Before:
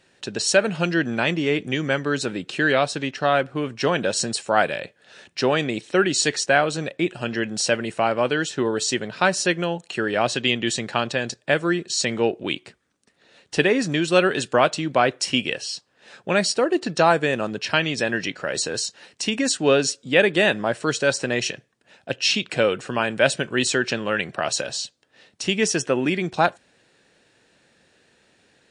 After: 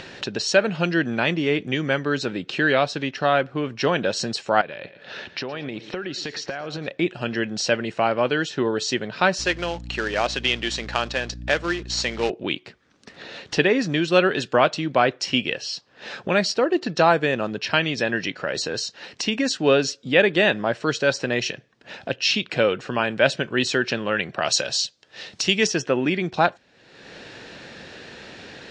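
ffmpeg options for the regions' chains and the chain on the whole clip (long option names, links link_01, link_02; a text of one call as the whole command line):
ffmpeg -i in.wav -filter_complex "[0:a]asettb=1/sr,asplit=3[link_01][link_02][link_03];[link_01]atrim=end=4.614[link_04];[link_02]atrim=start=4.61:end=6.88,asetpts=PTS-STARTPTS,afade=type=in:duration=0.004:curve=qsin,afade=type=out:start_time=2.266:duration=0.004:curve=qsin,lowpass=4600,acompressor=threshold=-30dB:ratio=6:attack=3.2:release=140:knee=1:detection=peak,aecho=1:1:113|226|339:0.141|0.0494|0.0173,atrim=end_sample=100107[link_05];[link_03]atrim=start=6.876[link_06];[link_04][link_05]acrossfade=duration=0.004:curve1=hsin:curve2=qsin[link_07];[link_07][link_06]acrossfade=duration=0.004:curve1=qsin:curve2=hsin,asettb=1/sr,asplit=3[link_08][link_09][link_10];[link_08]atrim=end=9.394[link_11];[link_09]atrim=start=9.39:end=12.3,asetpts=PTS-STARTPTS,afade=type=in:duration=0.004:curve=qsin,afade=type=out:start_time=2.906:duration=0.004:curve=qsin,highpass=frequency=510:poles=1,acrusher=bits=2:mode=log:mix=0:aa=0.000001,aeval=exprs='val(0)+0.0141*(sin(2*PI*60*n/s)+sin(2*PI*2*60*n/s)/2+sin(2*PI*3*60*n/s)/3+sin(2*PI*4*60*n/s)/4+sin(2*PI*5*60*n/s)/5)':channel_layout=same[link_12];[link_10]atrim=start=12.296[link_13];[link_11][link_12]acrossfade=duration=0.004:curve1=hsin:curve2=qsin[link_14];[link_14][link_13]acrossfade=duration=0.004:curve1=qsin:curve2=hsin,asettb=1/sr,asplit=3[link_15][link_16][link_17];[link_15]atrim=end=24.414[link_18];[link_16]atrim=start=24.41:end=25.67,asetpts=PTS-STARTPTS,afade=type=in:duration=0.004:curve=qsin,afade=type=out:start_time=1.256:duration=0.004:curve=qsin,highshelf=frequency=4000:gain=12,bandreject=frequency=260:width=6.5[link_19];[link_17]atrim=start=25.666[link_20];[link_18][link_19]acrossfade=duration=0.004:curve1=hsin:curve2=qsin[link_21];[link_21][link_20]acrossfade=duration=0.004:curve1=qsin:curve2=hsin,lowpass=frequency=5800:width=0.5412,lowpass=frequency=5800:width=1.3066,acompressor=mode=upward:threshold=-24dB:ratio=2.5" out.wav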